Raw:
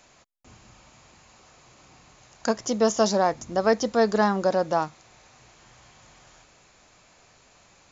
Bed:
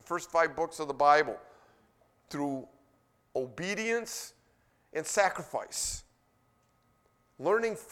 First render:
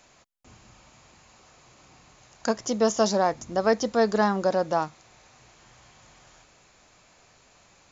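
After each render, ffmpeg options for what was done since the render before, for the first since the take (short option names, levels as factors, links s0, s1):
-af "volume=0.891"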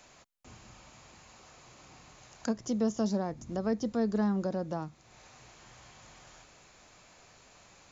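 -filter_complex "[0:a]acrossover=split=310[s0][s1];[s1]acompressor=threshold=0.00631:ratio=2.5[s2];[s0][s2]amix=inputs=2:normalize=0"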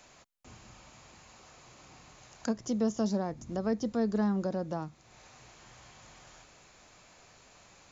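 -af anull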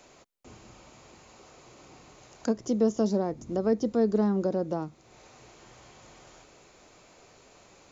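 -af "equalizer=f=390:t=o:w=1.3:g=8.5,bandreject=f=1700:w=20"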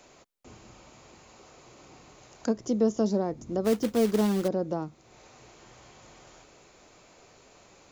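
-filter_complex "[0:a]asplit=3[s0][s1][s2];[s0]afade=t=out:st=3.64:d=0.02[s3];[s1]acrusher=bits=3:mode=log:mix=0:aa=0.000001,afade=t=in:st=3.64:d=0.02,afade=t=out:st=4.47:d=0.02[s4];[s2]afade=t=in:st=4.47:d=0.02[s5];[s3][s4][s5]amix=inputs=3:normalize=0"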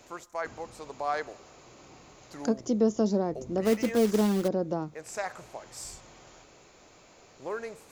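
-filter_complex "[1:a]volume=0.398[s0];[0:a][s0]amix=inputs=2:normalize=0"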